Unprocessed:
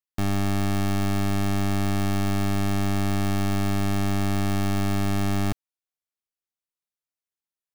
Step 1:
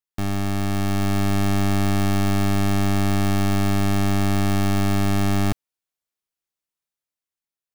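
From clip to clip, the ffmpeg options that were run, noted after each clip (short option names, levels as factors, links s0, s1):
-af "dynaudnorm=f=170:g=11:m=1.58"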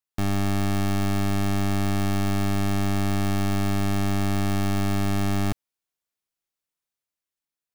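-af "alimiter=limit=0.075:level=0:latency=1"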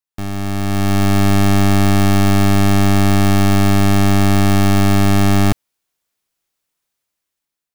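-af "dynaudnorm=f=320:g=5:m=3.76"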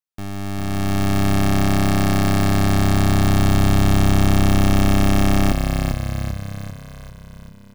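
-filter_complex "[0:a]asplit=9[s0][s1][s2][s3][s4][s5][s6][s7][s8];[s1]adelay=393,afreqshift=-33,volume=0.562[s9];[s2]adelay=786,afreqshift=-66,volume=0.32[s10];[s3]adelay=1179,afreqshift=-99,volume=0.182[s11];[s4]adelay=1572,afreqshift=-132,volume=0.105[s12];[s5]adelay=1965,afreqshift=-165,volume=0.0596[s13];[s6]adelay=2358,afreqshift=-198,volume=0.0339[s14];[s7]adelay=2751,afreqshift=-231,volume=0.0193[s15];[s8]adelay=3144,afreqshift=-264,volume=0.011[s16];[s0][s9][s10][s11][s12][s13][s14][s15][s16]amix=inputs=9:normalize=0,volume=0.531"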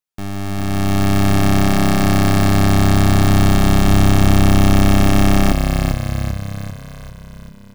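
-af "flanger=delay=4.8:depth=5.6:regen=-84:speed=0.54:shape=sinusoidal,volume=2.51"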